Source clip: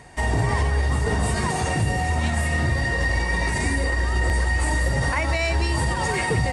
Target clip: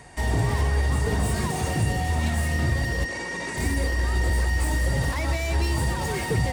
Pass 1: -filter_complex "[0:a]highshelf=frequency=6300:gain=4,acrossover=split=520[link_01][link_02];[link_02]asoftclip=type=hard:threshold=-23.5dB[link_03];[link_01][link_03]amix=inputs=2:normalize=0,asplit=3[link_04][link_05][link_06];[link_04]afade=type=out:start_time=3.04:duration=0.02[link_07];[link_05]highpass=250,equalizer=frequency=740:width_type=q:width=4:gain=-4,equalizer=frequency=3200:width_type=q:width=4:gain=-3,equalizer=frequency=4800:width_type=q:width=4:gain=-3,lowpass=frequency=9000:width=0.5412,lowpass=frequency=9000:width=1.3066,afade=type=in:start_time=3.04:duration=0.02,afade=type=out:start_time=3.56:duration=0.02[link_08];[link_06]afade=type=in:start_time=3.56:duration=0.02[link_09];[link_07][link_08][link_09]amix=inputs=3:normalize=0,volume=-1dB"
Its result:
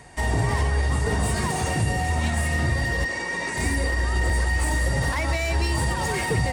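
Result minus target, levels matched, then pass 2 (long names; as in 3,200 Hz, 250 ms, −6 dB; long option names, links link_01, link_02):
hard clipping: distortion −7 dB
-filter_complex "[0:a]highshelf=frequency=6300:gain=4,acrossover=split=520[link_01][link_02];[link_02]asoftclip=type=hard:threshold=-29.5dB[link_03];[link_01][link_03]amix=inputs=2:normalize=0,asplit=3[link_04][link_05][link_06];[link_04]afade=type=out:start_time=3.04:duration=0.02[link_07];[link_05]highpass=250,equalizer=frequency=740:width_type=q:width=4:gain=-4,equalizer=frequency=3200:width_type=q:width=4:gain=-3,equalizer=frequency=4800:width_type=q:width=4:gain=-3,lowpass=frequency=9000:width=0.5412,lowpass=frequency=9000:width=1.3066,afade=type=in:start_time=3.04:duration=0.02,afade=type=out:start_time=3.56:duration=0.02[link_08];[link_06]afade=type=in:start_time=3.56:duration=0.02[link_09];[link_07][link_08][link_09]amix=inputs=3:normalize=0,volume=-1dB"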